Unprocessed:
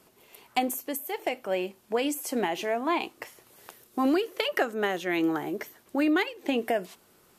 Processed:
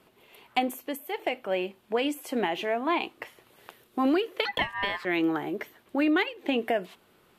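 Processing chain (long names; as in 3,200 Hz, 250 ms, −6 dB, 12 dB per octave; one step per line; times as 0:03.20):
0:04.45–0:05.05: ring modulation 1,400 Hz
high shelf with overshoot 4,400 Hz −7.5 dB, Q 1.5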